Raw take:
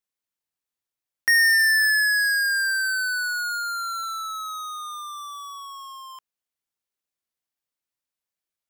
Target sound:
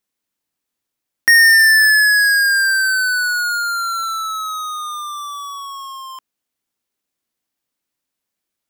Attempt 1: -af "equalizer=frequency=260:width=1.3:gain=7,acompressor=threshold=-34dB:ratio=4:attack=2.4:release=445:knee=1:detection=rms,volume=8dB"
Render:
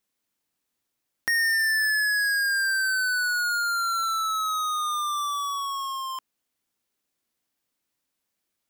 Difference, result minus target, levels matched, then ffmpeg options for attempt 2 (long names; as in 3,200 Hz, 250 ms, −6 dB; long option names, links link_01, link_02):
downward compressor: peak gain reduction +14 dB
-af "equalizer=frequency=260:width=1.3:gain=7,volume=8dB"